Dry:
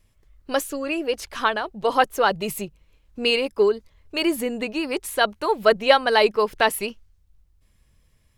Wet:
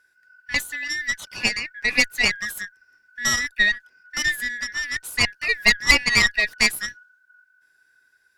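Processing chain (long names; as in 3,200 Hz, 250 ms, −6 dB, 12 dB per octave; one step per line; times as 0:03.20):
band-splitting scrambler in four parts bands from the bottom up 3142
harmonic generator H 4 −12 dB, 7 −35 dB, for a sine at −2 dBFS
level −1 dB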